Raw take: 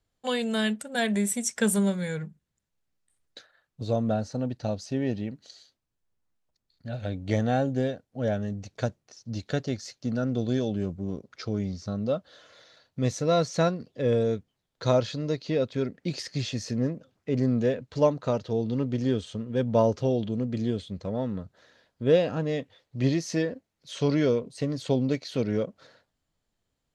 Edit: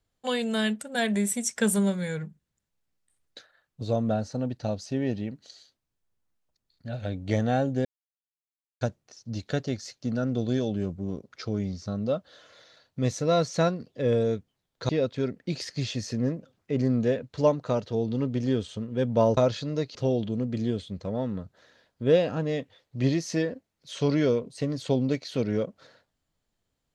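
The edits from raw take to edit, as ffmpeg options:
ffmpeg -i in.wav -filter_complex "[0:a]asplit=6[link_01][link_02][link_03][link_04][link_05][link_06];[link_01]atrim=end=7.85,asetpts=PTS-STARTPTS,afade=type=out:start_time=7.846:duration=0.004:curve=hsin[link_07];[link_02]atrim=start=7.85:end=8.81,asetpts=PTS-STARTPTS,volume=0[link_08];[link_03]atrim=start=8.81:end=14.892,asetpts=PTS-STARTPTS,afade=type=in:duration=0.004:curve=hsin[link_09];[link_04]atrim=start=15.468:end=19.952[link_10];[link_05]atrim=start=14.888:end=15.472[link_11];[link_06]atrim=start=19.948[link_12];[link_07][link_08][link_09]concat=n=3:v=0:a=1[link_13];[link_13][link_10]acrossfade=duration=0.004:curve1=hsin:curve2=hsin[link_14];[link_14][link_11]acrossfade=duration=0.004:curve1=hsin:curve2=hsin[link_15];[link_15][link_12]acrossfade=duration=0.004:curve1=hsin:curve2=hsin" out.wav

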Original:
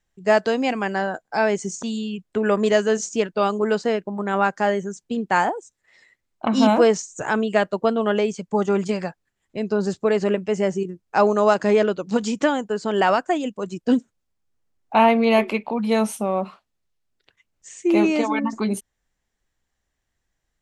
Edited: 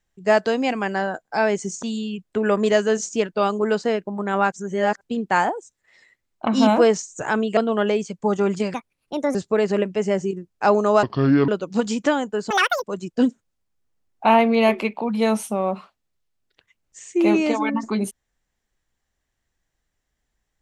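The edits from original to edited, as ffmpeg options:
ffmpeg -i in.wav -filter_complex "[0:a]asplit=10[link_01][link_02][link_03][link_04][link_05][link_06][link_07][link_08][link_09][link_10];[link_01]atrim=end=4.522[link_11];[link_02]atrim=start=4.518:end=5.012,asetpts=PTS-STARTPTS,areverse[link_12];[link_03]atrim=start=5.008:end=7.572[link_13];[link_04]atrim=start=7.858:end=9.034[link_14];[link_05]atrim=start=9.03:end=9.87,asetpts=PTS-STARTPTS,asetrate=60858,aresample=44100,atrim=end_sample=26843,asetpts=PTS-STARTPTS[link_15];[link_06]atrim=start=9.866:end=11.554[link_16];[link_07]atrim=start=11.55:end=11.85,asetpts=PTS-STARTPTS,asetrate=29106,aresample=44100,atrim=end_sample=20045,asetpts=PTS-STARTPTS[link_17];[link_08]atrim=start=11.846:end=12.874[link_18];[link_09]atrim=start=12.87:end=13.53,asetpts=PTS-STARTPTS,asetrate=87759,aresample=44100,atrim=end_sample=14626,asetpts=PTS-STARTPTS[link_19];[link_10]atrim=start=13.526[link_20];[link_11][link_12]acrossfade=duration=0.004:curve1=hsin:curve2=hsin[link_21];[link_21][link_13]acrossfade=duration=0.004:curve1=hsin:curve2=hsin[link_22];[link_22][link_14]acrossfade=duration=0.004:curve1=hsin:curve2=hsin[link_23];[link_23][link_15]acrossfade=duration=0.004:curve1=hsin:curve2=hsin[link_24];[link_24][link_16]acrossfade=duration=0.004:curve1=hsin:curve2=hsin[link_25];[link_25][link_17]acrossfade=duration=0.004:curve1=hsin:curve2=hsin[link_26];[link_26][link_18]acrossfade=duration=0.004:curve1=hsin:curve2=hsin[link_27];[link_27][link_19]acrossfade=duration=0.004:curve1=hsin:curve2=hsin[link_28];[link_28][link_20]acrossfade=duration=0.004:curve1=hsin:curve2=hsin" out.wav

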